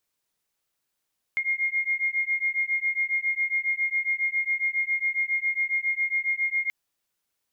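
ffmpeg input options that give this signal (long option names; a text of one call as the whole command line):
ffmpeg -f lavfi -i "aevalsrc='0.0473*(sin(2*PI*2130*t)+sin(2*PI*2137.3*t))':duration=5.33:sample_rate=44100" out.wav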